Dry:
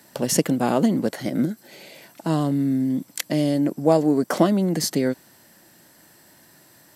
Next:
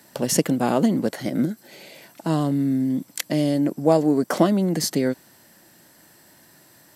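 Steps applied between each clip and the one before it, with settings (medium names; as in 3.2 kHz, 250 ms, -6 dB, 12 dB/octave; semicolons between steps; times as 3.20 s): no audible change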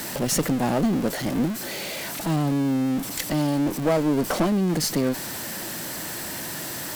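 jump at every zero crossing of -23 dBFS; valve stage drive 15 dB, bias 0.7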